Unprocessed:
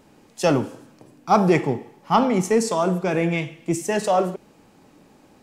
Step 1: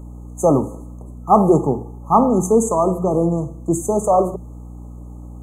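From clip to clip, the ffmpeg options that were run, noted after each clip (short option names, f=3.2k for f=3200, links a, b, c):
-af "bandreject=f=60:t=h:w=6,bandreject=f=120:t=h:w=6,bandreject=f=180:t=h:w=6,aeval=exprs='val(0)+0.0126*(sin(2*PI*60*n/s)+sin(2*PI*2*60*n/s)/2+sin(2*PI*3*60*n/s)/3+sin(2*PI*4*60*n/s)/4+sin(2*PI*5*60*n/s)/5)':c=same,afftfilt=real='re*(1-between(b*sr/4096,1300,6200))':imag='im*(1-between(b*sr/4096,1300,6200))':win_size=4096:overlap=0.75,volume=4.5dB"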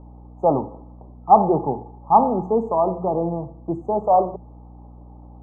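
-af "lowpass=f=840:t=q:w=3.4,volume=-8dB"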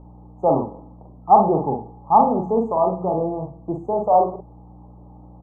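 -filter_complex "[0:a]asplit=2[a][b];[b]adelay=44,volume=-4dB[c];[a][c]amix=inputs=2:normalize=0,volume=-1dB"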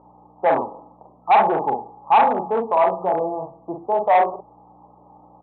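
-af "aresample=8000,asoftclip=type=hard:threshold=-14.5dB,aresample=44100,bandpass=f=1.1k:t=q:w=1:csg=0,volume=6dB"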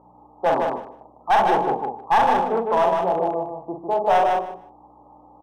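-filter_complex "[0:a]aeval=exprs='clip(val(0),-1,0.2)':c=same,asplit=2[a][b];[b]aecho=0:1:153|306|459:0.631|0.107|0.0182[c];[a][c]amix=inputs=2:normalize=0,volume=-1.5dB"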